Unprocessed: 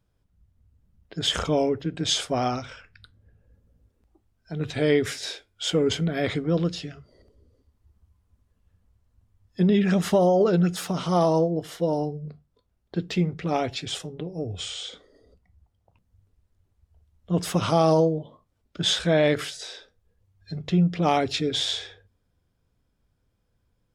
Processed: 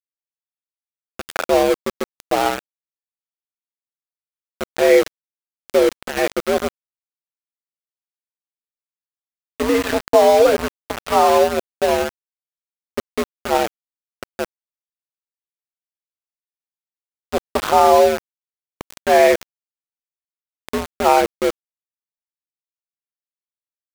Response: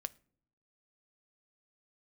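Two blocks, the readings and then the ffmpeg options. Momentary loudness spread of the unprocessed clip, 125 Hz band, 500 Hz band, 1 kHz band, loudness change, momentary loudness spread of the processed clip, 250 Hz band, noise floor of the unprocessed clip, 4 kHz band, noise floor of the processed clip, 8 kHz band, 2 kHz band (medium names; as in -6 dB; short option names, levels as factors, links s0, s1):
15 LU, -13.5 dB, +8.0 dB, +10.5 dB, +7.0 dB, 17 LU, -0.5 dB, -72 dBFS, -2.0 dB, under -85 dBFS, +3.5 dB, +8.0 dB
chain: -filter_complex "[0:a]highpass=f=250:t=q:w=0.5412,highpass=f=250:t=q:w=1.307,lowpass=f=2500:t=q:w=0.5176,lowpass=f=2500:t=q:w=0.7071,lowpass=f=2500:t=q:w=1.932,afreqshift=67,asplit=2[s0][s1];[1:a]atrim=start_sample=2205[s2];[s1][s2]afir=irnorm=-1:irlink=0,volume=1.78[s3];[s0][s3]amix=inputs=2:normalize=0,aeval=exprs='val(0)*gte(abs(val(0)),0.119)':c=same,volume=1.12"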